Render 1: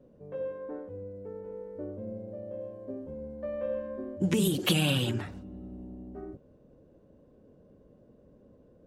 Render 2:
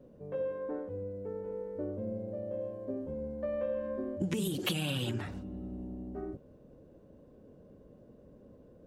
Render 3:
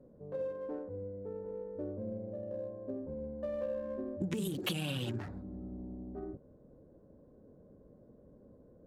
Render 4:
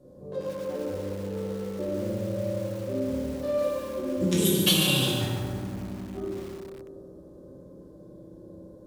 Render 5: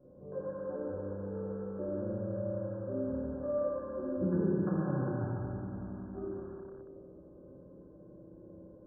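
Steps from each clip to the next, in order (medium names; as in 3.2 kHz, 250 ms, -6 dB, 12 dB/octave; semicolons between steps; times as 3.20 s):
compression 6:1, threshold -32 dBFS, peak gain reduction 11 dB; trim +2 dB
local Wiener filter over 15 samples; trim -2.5 dB
high-order bell 6.4 kHz +13 dB 2.3 oct; reverberation RT60 2.8 s, pre-delay 3 ms, DRR -7 dB; bit-crushed delay 142 ms, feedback 35%, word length 7-bit, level -7 dB; trim +2 dB
brick-wall FIR low-pass 1.7 kHz; trim -6 dB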